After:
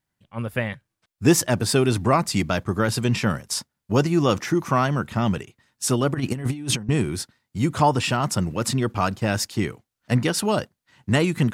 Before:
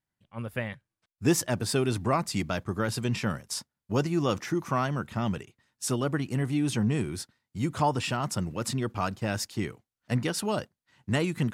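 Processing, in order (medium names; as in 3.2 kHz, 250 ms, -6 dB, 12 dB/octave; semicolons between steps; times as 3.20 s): 6.14–6.89 s: compressor with a negative ratio -32 dBFS, ratio -0.5; trim +7 dB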